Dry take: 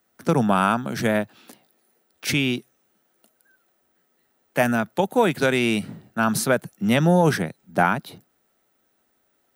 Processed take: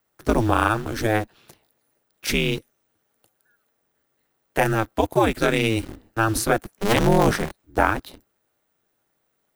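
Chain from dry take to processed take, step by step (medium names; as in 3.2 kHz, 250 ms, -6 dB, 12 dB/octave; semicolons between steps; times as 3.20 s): 6.62–7.63 s: cycle switcher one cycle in 2, inverted; ring modulator 110 Hz; in parallel at -5 dB: bit crusher 6-bit; on the sum: trim -1 dB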